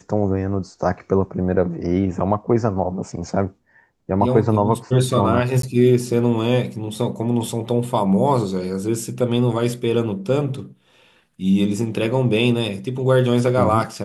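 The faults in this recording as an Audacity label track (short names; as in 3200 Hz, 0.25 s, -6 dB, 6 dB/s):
5.620000	5.630000	gap 13 ms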